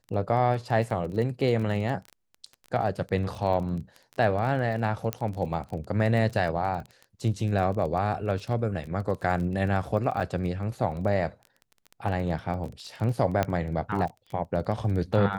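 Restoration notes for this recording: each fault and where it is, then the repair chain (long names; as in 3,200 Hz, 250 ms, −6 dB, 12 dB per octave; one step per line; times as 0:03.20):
surface crackle 22 per second −33 dBFS
0:05.13: click −12 dBFS
0:10.20–0:10.21: drop-out 6.8 ms
0:13.43: click −11 dBFS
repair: click removal
repair the gap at 0:10.20, 6.8 ms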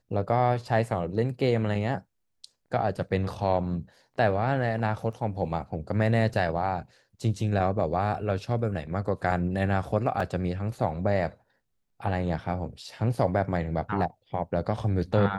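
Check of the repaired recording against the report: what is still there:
0:05.13: click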